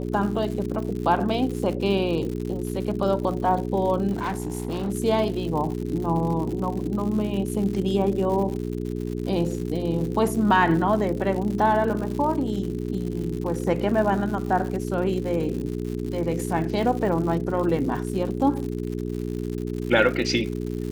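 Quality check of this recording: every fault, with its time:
crackle 140/s -31 dBFS
hum 60 Hz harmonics 7 -29 dBFS
4.11–4.9 clipped -23 dBFS

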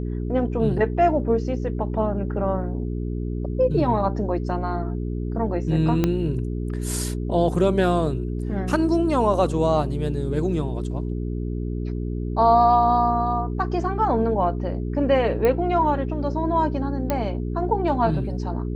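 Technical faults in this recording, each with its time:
hum 60 Hz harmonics 7 -27 dBFS
6.04 pop -8 dBFS
15.45 pop -11 dBFS
17.1 pop -9 dBFS

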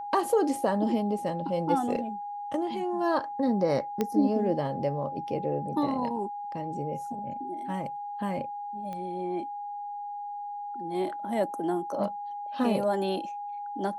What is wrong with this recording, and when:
tone 820 Hz -34 dBFS
4.01 pop -14 dBFS
8.93 pop -26 dBFS

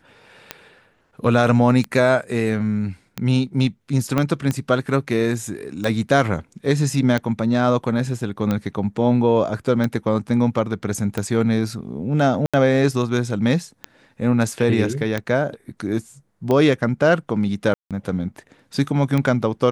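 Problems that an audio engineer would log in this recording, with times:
tick 45 rpm -10 dBFS
4.18 pop -7 dBFS
12.46–12.54 gap 76 ms
17.74–17.91 gap 0.167 s

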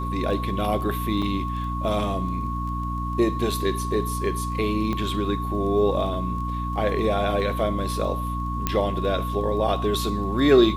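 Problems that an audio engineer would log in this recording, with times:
crackle 12/s -33 dBFS
hum 60 Hz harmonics 5 -29 dBFS
tone 1100 Hz -30 dBFS
1.22 gap 4.8 ms
4.93 pop -16 dBFS
8.67 pop -7 dBFS

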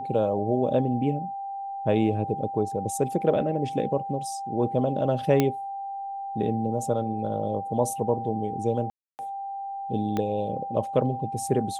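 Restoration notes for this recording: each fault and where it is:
tone 790 Hz -31 dBFS
5.4 pop -8 dBFS
8.9–9.19 gap 0.289 s
10.17 pop -15 dBFS

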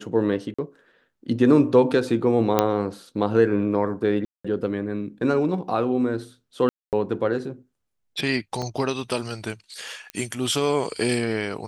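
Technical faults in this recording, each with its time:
0.54–0.58 gap 45 ms
2.59 pop -4 dBFS
4.25–4.45 gap 0.195 s
6.69–6.93 gap 0.238 s
8.62 gap 4.4 ms
10.1 pop -17 dBFS

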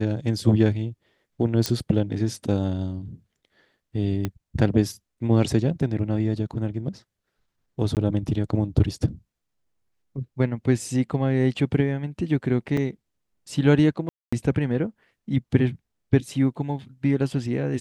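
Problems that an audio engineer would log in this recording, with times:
1.66 pop -9 dBFS
4.25 pop -13 dBFS
7.95–7.97 gap 18 ms
12.77 gap 3.3 ms
14.09–14.32 gap 0.235 s

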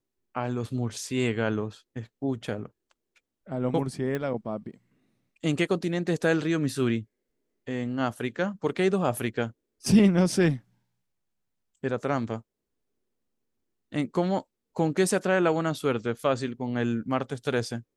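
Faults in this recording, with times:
4.15 pop -18 dBFS

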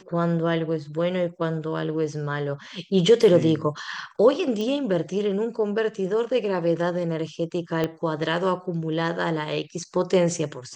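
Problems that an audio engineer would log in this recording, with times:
4.61 pop -18 dBFS
7.84 pop -12 dBFS

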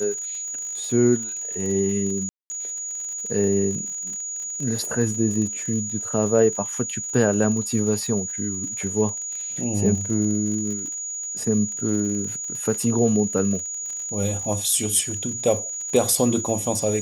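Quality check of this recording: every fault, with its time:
crackle 49/s -30 dBFS
tone 6800 Hz -28 dBFS
2.29–2.5 gap 0.21 s
4.85 pop

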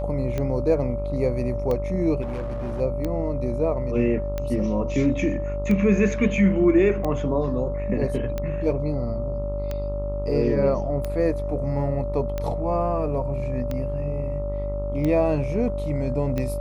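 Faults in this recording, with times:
buzz 50 Hz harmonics 27 -29 dBFS
tick 45 rpm -15 dBFS
tone 580 Hz -29 dBFS
2.21–2.81 clipped -25.5 dBFS

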